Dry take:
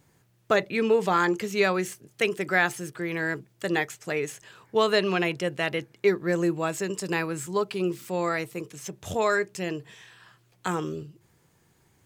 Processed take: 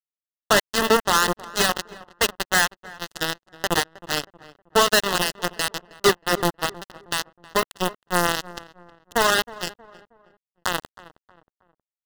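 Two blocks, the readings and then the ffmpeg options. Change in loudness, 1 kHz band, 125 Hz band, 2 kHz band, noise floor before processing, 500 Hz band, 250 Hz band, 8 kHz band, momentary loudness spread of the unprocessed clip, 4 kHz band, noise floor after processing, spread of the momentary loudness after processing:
+4.0 dB, +6.0 dB, -1.0 dB, +4.0 dB, -65 dBFS, 0.0 dB, -2.0 dB, +12.0 dB, 12 LU, +11.5 dB, under -85 dBFS, 12 LU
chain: -filter_complex "[0:a]lowpass=f=4.7k:w=0.5412,lowpass=f=4.7k:w=1.3066,bandreject=f=165.8:t=h:w=4,bandreject=f=331.6:t=h:w=4,bandreject=f=497.4:t=h:w=4,bandreject=f=663.2:t=h:w=4,bandreject=f=829:t=h:w=4,bandreject=f=994.8:t=h:w=4,bandreject=f=1.1606k:t=h:w=4,bandreject=f=1.3264k:t=h:w=4,bandreject=f=1.4922k:t=h:w=4,adynamicequalizer=threshold=0.0126:dfrequency=430:dqfactor=1.2:tfrequency=430:tqfactor=1.2:attack=5:release=100:ratio=0.375:range=2:mode=cutabove:tftype=bell,asplit=2[a][b];[b]acompressor=threshold=-35dB:ratio=8,volume=-1dB[c];[a][c]amix=inputs=2:normalize=0,acrusher=bits=2:mix=0:aa=0.5,apsyclip=20dB,acrusher=bits=2:mode=log:mix=0:aa=0.000001,asuperstop=centerf=2300:order=4:qfactor=3.7,asplit=2[d][e];[e]adelay=316,lowpass=f=1.6k:p=1,volume=-18dB,asplit=2[f][g];[g]adelay=316,lowpass=f=1.6k:p=1,volume=0.4,asplit=2[h][i];[i]adelay=316,lowpass=f=1.6k:p=1,volume=0.4[j];[f][h][j]amix=inputs=3:normalize=0[k];[d][k]amix=inputs=2:normalize=0,volume=-6dB"

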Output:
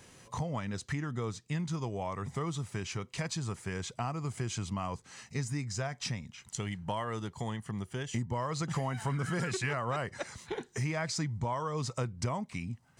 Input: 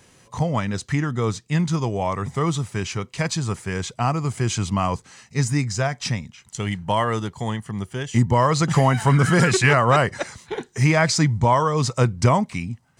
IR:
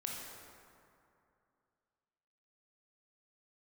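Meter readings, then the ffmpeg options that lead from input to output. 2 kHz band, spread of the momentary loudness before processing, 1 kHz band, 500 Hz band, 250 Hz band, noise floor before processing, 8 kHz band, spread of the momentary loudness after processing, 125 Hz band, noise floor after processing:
-15.0 dB, 12 LU, -15.5 dB, -14.5 dB, -14.0 dB, -55 dBFS, -12.0 dB, 6 LU, -14.0 dB, -62 dBFS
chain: -af "acompressor=threshold=-33dB:ratio=3,volume=-2.5dB"

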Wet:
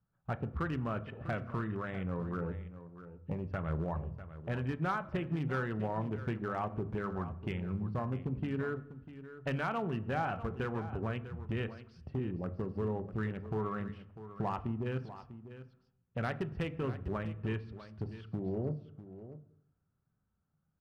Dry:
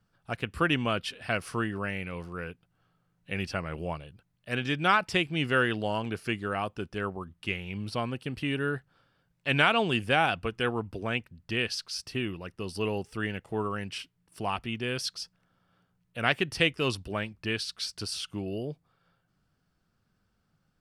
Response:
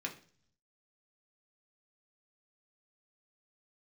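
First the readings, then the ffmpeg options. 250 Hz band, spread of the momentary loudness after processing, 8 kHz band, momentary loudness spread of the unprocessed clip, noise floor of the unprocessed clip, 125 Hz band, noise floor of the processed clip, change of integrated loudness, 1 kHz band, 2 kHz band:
-3.5 dB, 14 LU, under -20 dB, 13 LU, -74 dBFS, -0.5 dB, -80 dBFS, -7.0 dB, -7.5 dB, -13.5 dB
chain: -filter_complex "[0:a]lowpass=1.4k,afwtdn=0.00794,equalizer=f=79:w=0.84:g=8,acompressor=threshold=-36dB:ratio=12,asoftclip=type=hard:threshold=-33dB,aecho=1:1:647:0.211,asplit=2[a][b];[1:a]atrim=start_sample=2205,asetrate=23373,aresample=44100[c];[b][c]afir=irnorm=-1:irlink=0,volume=-10.5dB[d];[a][d]amix=inputs=2:normalize=0,volume=3.5dB"

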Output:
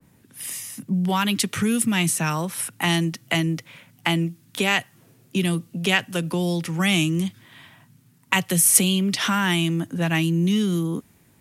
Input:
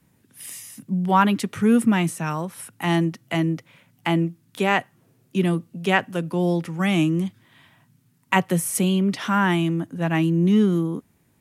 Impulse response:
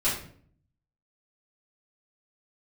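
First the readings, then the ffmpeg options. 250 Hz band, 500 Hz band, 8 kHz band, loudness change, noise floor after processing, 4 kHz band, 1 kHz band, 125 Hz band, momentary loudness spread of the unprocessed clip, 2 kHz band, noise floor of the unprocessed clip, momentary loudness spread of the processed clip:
-2.0 dB, -3.5 dB, +10.5 dB, 0.0 dB, -58 dBFS, +7.5 dB, -4.0 dB, -0.5 dB, 12 LU, +2.0 dB, -63 dBFS, 9 LU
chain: -filter_complex "[0:a]acrossover=split=130|2900[a][b][c];[b]acompressor=threshold=-28dB:ratio=6[d];[a][d][c]amix=inputs=3:normalize=0,adynamicequalizer=threshold=0.00708:dfrequency=1600:dqfactor=0.7:tfrequency=1600:tqfactor=0.7:attack=5:release=100:ratio=0.375:range=3:mode=boostabove:tftype=highshelf,volume=5dB"

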